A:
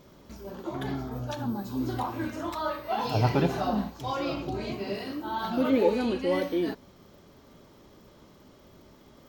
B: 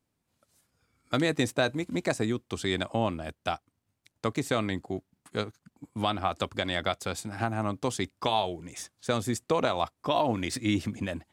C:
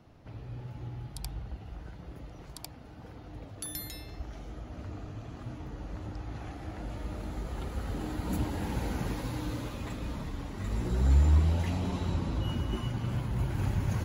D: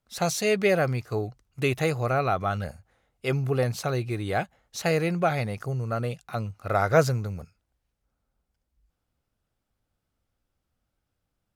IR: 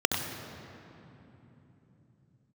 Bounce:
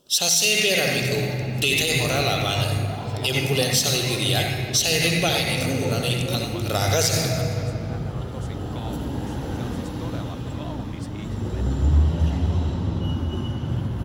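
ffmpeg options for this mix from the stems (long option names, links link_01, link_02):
-filter_complex "[0:a]volume=-13dB,asplit=2[link_01][link_02];[link_02]volume=-10dB[link_03];[1:a]adelay=500,volume=-12.5dB[link_04];[2:a]adelay=600,volume=-5dB,asplit=2[link_05][link_06];[link_06]volume=-5dB[link_07];[3:a]aexciter=amount=5.3:drive=9.8:freq=2100,volume=-9dB,asplit=2[link_08][link_09];[link_09]volume=-4.5dB[link_10];[4:a]atrim=start_sample=2205[link_11];[link_03][link_07][link_10]amix=inputs=3:normalize=0[link_12];[link_12][link_11]afir=irnorm=-1:irlink=0[link_13];[link_01][link_04][link_05][link_08][link_13]amix=inputs=5:normalize=0,alimiter=limit=-9.5dB:level=0:latency=1:release=75"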